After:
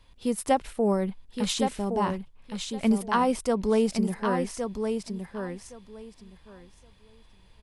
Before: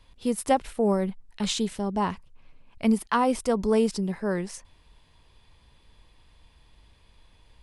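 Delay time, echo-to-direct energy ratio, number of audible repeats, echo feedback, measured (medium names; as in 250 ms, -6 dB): 1116 ms, -6.0 dB, 2, 17%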